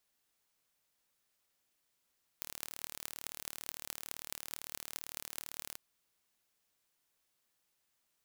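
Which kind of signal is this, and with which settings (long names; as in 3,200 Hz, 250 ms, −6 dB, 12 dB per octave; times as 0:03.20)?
impulse train 37.8 per second, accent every 8, −10.5 dBFS 3.35 s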